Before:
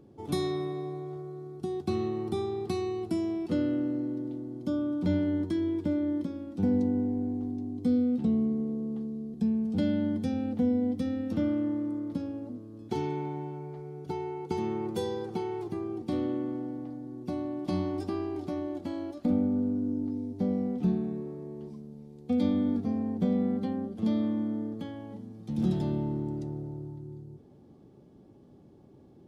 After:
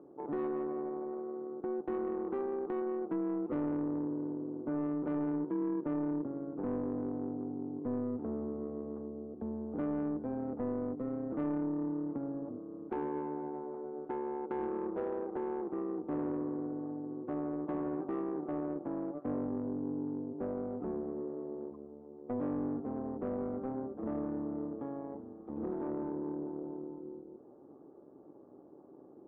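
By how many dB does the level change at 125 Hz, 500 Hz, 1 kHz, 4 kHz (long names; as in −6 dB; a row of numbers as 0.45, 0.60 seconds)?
−11.5 dB, −2.5 dB, −2.0 dB, below −25 dB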